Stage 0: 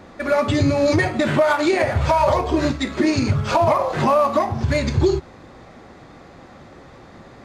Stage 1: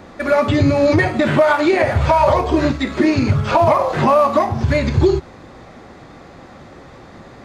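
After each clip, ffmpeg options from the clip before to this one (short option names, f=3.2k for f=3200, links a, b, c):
-filter_complex "[0:a]acrossover=split=3900[a][b];[b]acompressor=threshold=-43dB:ratio=4:attack=1:release=60[c];[a][c]amix=inputs=2:normalize=0,volume=3.5dB"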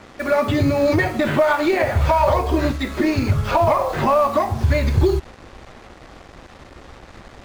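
-af "asubboost=boost=6:cutoff=62,acrusher=bits=5:mix=0:aa=0.5,volume=-3dB"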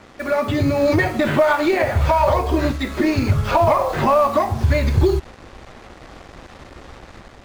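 -af "dynaudnorm=f=470:g=3:m=4dB,volume=-2dB"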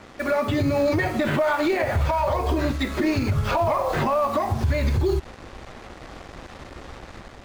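-af "alimiter=limit=-14dB:level=0:latency=1:release=124"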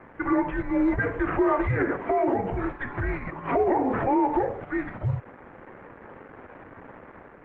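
-af "highpass=f=370:t=q:w=0.5412,highpass=f=370:t=q:w=1.307,lowpass=f=2.4k:t=q:w=0.5176,lowpass=f=2.4k:t=q:w=0.7071,lowpass=f=2.4k:t=q:w=1.932,afreqshift=-260" -ar 48000 -c:a libopus -b:a 16k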